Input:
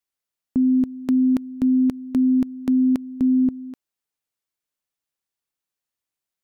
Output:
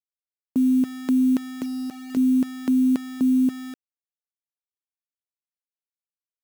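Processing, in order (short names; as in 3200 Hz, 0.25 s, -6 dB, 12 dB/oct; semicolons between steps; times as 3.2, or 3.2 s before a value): Wiener smoothing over 9 samples; HPF 190 Hz 12 dB/oct; 1.49–2.17 compressor 12:1, threshold -27 dBFS, peak gain reduction 10.5 dB; bit-crush 7-bit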